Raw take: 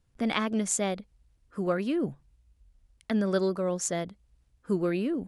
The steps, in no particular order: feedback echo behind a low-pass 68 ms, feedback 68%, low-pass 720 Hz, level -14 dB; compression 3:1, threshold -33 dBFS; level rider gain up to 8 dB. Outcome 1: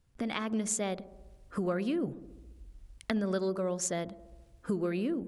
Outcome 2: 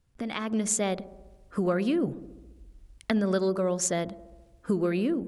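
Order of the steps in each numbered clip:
level rider > compression > feedback echo behind a low-pass; compression > level rider > feedback echo behind a low-pass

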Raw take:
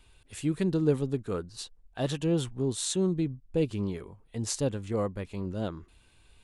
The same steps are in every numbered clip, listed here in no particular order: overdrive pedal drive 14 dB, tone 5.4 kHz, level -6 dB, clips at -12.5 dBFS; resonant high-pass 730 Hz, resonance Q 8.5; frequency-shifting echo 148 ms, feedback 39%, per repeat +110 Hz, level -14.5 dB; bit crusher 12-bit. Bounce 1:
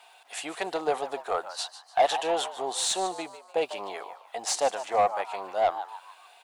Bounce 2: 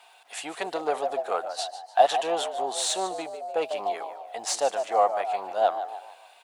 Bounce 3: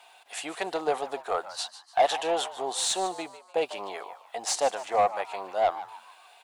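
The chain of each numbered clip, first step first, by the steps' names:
bit crusher > resonant high-pass > frequency-shifting echo > overdrive pedal; bit crusher > frequency-shifting echo > overdrive pedal > resonant high-pass; resonant high-pass > bit crusher > overdrive pedal > frequency-shifting echo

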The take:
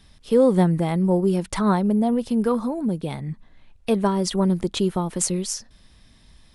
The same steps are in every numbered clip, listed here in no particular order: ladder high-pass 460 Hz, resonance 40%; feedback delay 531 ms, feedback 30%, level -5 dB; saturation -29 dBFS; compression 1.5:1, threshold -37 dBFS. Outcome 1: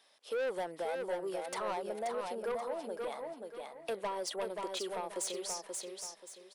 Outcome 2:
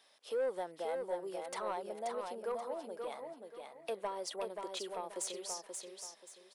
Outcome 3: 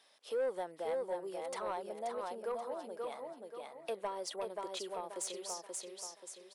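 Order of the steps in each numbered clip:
ladder high-pass > saturation > feedback delay > compression; compression > ladder high-pass > saturation > feedback delay; feedback delay > compression > ladder high-pass > saturation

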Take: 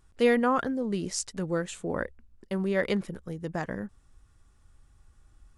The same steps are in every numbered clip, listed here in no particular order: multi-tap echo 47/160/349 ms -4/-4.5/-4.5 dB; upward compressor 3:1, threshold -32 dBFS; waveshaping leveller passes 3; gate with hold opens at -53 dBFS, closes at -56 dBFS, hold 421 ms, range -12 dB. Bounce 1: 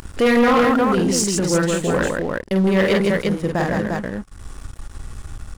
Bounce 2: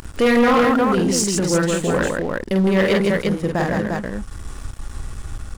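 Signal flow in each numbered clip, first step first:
gate with hold > multi-tap echo > upward compressor > waveshaping leveller; gate with hold > upward compressor > multi-tap echo > waveshaping leveller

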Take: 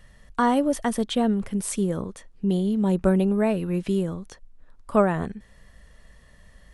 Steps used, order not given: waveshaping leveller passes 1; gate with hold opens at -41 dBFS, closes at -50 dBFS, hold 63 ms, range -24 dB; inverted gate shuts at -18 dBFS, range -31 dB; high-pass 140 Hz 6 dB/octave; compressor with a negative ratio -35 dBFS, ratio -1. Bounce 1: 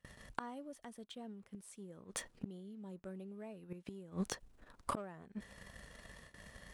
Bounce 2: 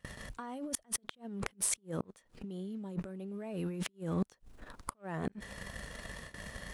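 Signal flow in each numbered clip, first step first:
waveshaping leveller > gate with hold > high-pass > inverted gate > compressor with a negative ratio; waveshaping leveller > gate with hold > compressor with a negative ratio > inverted gate > high-pass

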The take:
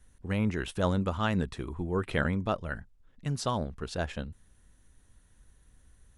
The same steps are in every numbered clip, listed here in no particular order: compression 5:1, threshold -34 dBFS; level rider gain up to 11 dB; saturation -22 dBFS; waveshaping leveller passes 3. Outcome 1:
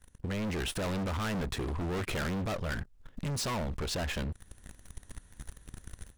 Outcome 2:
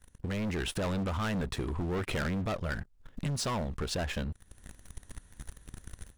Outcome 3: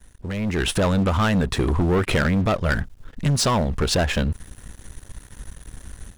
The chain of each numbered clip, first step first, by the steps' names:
waveshaping leveller > level rider > saturation > compression; waveshaping leveller > saturation > level rider > compression; compression > waveshaping leveller > saturation > level rider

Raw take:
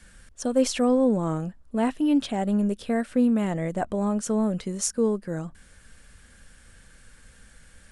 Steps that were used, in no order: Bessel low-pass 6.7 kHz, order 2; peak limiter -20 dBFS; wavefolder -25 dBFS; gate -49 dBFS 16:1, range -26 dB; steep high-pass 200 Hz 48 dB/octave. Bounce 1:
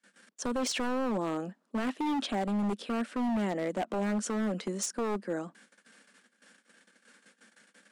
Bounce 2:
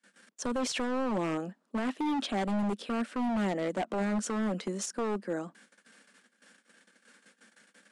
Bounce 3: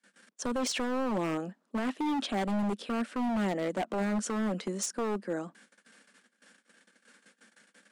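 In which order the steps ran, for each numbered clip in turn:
gate > Bessel low-pass > peak limiter > steep high-pass > wavefolder; gate > steep high-pass > peak limiter > wavefolder > Bessel low-pass; Bessel low-pass > gate > steep high-pass > peak limiter > wavefolder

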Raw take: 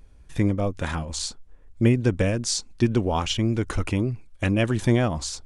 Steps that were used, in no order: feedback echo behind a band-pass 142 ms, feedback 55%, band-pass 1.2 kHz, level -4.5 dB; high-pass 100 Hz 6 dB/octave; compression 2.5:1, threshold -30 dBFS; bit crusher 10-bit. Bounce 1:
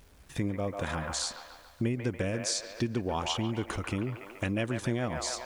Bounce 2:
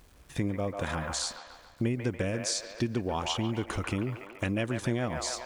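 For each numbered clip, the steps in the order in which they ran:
feedback echo behind a band-pass > bit crusher > compression > high-pass; high-pass > bit crusher > feedback echo behind a band-pass > compression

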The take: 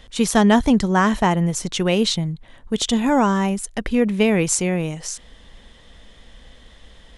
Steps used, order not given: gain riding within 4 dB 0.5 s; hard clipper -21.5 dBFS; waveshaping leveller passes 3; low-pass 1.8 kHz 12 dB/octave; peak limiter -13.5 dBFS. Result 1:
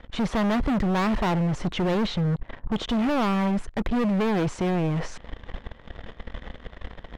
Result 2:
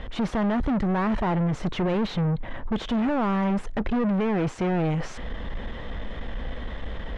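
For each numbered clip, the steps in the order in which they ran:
waveshaping leveller > gain riding > peak limiter > low-pass > hard clipper; peak limiter > gain riding > hard clipper > waveshaping leveller > low-pass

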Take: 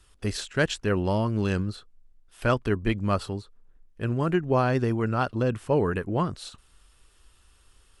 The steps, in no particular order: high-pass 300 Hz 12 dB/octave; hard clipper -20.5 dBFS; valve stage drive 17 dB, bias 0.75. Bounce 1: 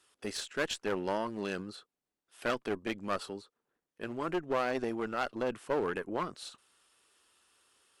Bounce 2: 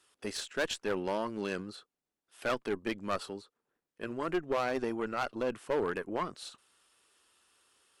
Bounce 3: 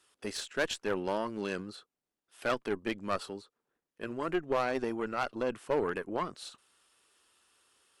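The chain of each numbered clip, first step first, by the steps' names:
hard clipper > high-pass > valve stage; high-pass > hard clipper > valve stage; high-pass > valve stage > hard clipper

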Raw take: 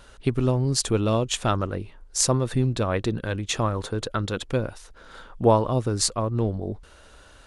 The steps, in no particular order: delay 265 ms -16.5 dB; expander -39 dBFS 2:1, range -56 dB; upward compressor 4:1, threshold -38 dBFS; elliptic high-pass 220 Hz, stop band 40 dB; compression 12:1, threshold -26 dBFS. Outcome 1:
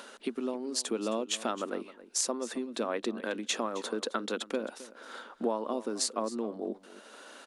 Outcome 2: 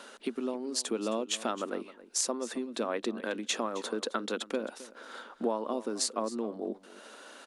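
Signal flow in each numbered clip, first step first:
compression > delay > expander > upward compressor > elliptic high-pass; compression > upward compressor > delay > expander > elliptic high-pass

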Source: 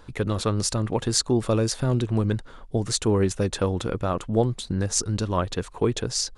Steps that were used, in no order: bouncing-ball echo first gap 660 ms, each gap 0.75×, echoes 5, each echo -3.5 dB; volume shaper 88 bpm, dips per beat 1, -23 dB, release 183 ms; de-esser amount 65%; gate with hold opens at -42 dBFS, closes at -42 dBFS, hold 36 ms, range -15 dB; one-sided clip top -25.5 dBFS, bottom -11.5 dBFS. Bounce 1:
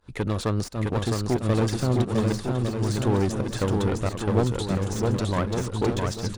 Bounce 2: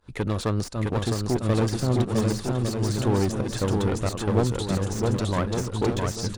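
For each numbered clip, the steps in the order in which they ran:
gate with hold > one-sided clip > de-esser > volume shaper > bouncing-ball echo; gate with hold > volume shaper > one-sided clip > bouncing-ball echo > de-esser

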